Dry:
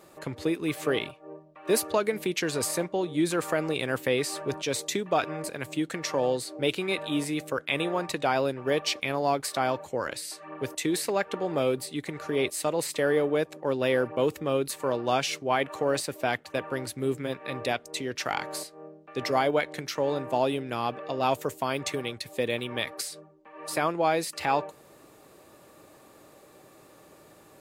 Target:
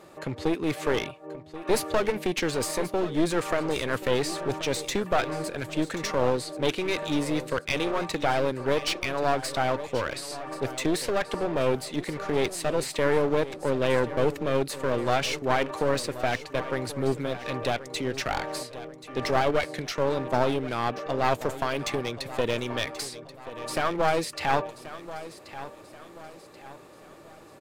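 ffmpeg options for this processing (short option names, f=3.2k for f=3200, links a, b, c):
-af "highshelf=f=8.2k:g=-11.5,aeval=exprs='clip(val(0),-1,0.0251)':c=same,aecho=1:1:1082|2164|3246|4328:0.188|0.0772|0.0317|0.013,volume=4dB"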